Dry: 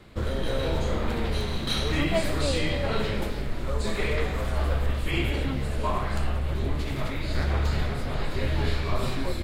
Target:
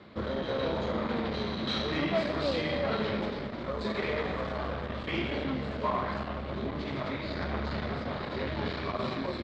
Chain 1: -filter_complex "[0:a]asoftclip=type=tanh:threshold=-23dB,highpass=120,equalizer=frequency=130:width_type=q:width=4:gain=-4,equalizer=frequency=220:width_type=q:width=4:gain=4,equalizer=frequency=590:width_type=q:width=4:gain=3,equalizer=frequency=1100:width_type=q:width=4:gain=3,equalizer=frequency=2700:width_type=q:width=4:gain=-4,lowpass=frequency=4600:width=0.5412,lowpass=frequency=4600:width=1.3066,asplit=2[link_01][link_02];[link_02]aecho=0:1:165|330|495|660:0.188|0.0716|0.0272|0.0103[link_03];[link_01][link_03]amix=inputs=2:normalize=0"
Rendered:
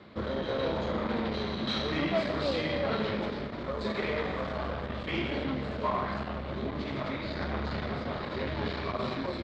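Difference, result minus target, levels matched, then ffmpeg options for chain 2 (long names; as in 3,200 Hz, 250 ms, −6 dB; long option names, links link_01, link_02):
echo 56 ms early
-filter_complex "[0:a]asoftclip=type=tanh:threshold=-23dB,highpass=120,equalizer=frequency=130:width_type=q:width=4:gain=-4,equalizer=frequency=220:width_type=q:width=4:gain=4,equalizer=frequency=590:width_type=q:width=4:gain=3,equalizer=frequency=1100:width_type=q:width=4:gain=3,equalizer=frequency=2700:width_type=q:width=4:gain=-4,lowpass=frequency=4600:width=0.5412,lowpass=frequency=4600:width=1.3066,asplit=2[link_01][link_02];[link_02]aecho=0:1:221|442|663|884:0.188|0.0716|0.0272|0.0103[link_03];[link_01][link_03]amix=inputs=2:normalize=0"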